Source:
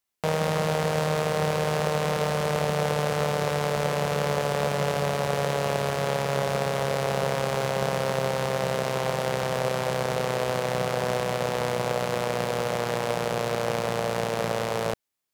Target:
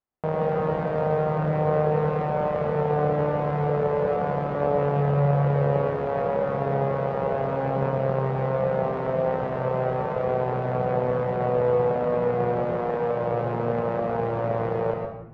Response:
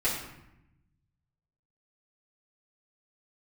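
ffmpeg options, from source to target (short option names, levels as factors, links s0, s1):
-filter_complex "[0:a]lowpass=1100,asplit=2[s0][s1];[1:a]atrim=start_sample=2205,adelay=105[s2];[s1][s2]afir=irnorm=-1:irlink=0,volume=0.299[s3];[s0][s3]amix=inputs=2:normalize=0"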